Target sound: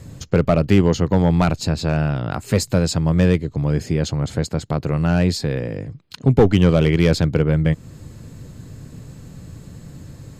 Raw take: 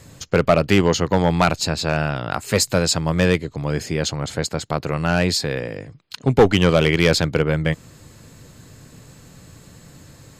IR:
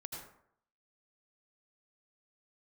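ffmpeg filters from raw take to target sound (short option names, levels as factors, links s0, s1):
-filter_complex "[0:a]asplit=2[s0][s1];[s1]acompressor=threshold=0.0447:ratio=6,volume=0.794[s2];[s0][s2]amix=inputs=2:normalize=0,lowshelf=f=430:g=12,volume=0.398"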